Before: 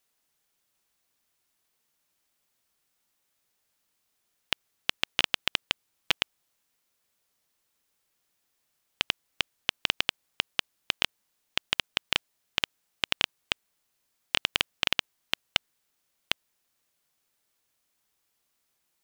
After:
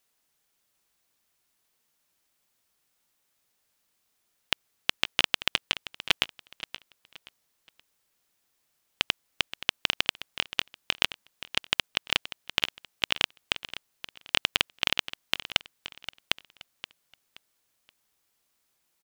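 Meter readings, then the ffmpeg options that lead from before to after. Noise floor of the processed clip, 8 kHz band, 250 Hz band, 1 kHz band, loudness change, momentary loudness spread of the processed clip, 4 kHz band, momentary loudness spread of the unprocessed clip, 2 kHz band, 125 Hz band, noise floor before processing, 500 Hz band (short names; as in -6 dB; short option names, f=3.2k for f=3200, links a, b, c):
-75 dBFS, +1.5 dB, +1.5 dB, +1.5 dB, +1.5 dB, 16 LU, +1.5 dB, 7 LU, +1.5 dB, +1.5 dB, -77 dBFS, +1.5 dB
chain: -af "aecho=1:1:525|1050|1575:0.2|0.0599|0.018,volume=1.5dB"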